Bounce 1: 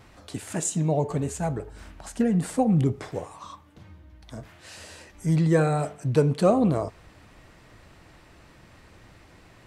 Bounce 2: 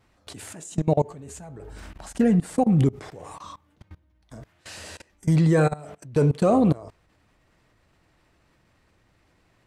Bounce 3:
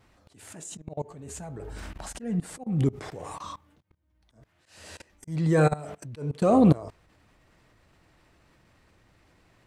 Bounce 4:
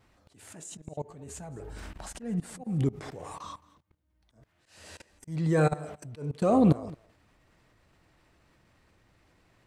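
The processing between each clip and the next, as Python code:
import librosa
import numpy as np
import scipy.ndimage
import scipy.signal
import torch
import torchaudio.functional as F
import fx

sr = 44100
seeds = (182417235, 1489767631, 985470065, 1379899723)

y1 = fx.level_steps(x, sr, step_db=23)
y1 = y1 * 10.0 ** (5.5 / 20.0)
y2 = fx.auto_swell(y1, sr, attack_ms=512.0)
y2 = y2 * 10.0 ** (2.0 / 20.0)
y3 = y2 + 10.0 ** (-21.5 / 20.0) * np.pad(y2, (int(219 * sr / 1000.0), 0))[:len(y2)]
y3 = y3 * 10.0 ** (-3.0 / 20.0)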